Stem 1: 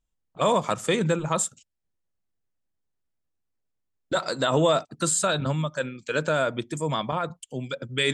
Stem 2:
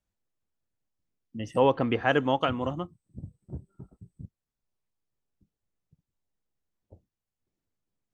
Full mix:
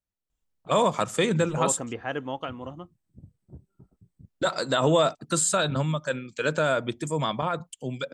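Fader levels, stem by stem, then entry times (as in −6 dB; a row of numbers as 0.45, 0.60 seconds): 0.0, −7.5 decibels; 0.30, 0.00 seconds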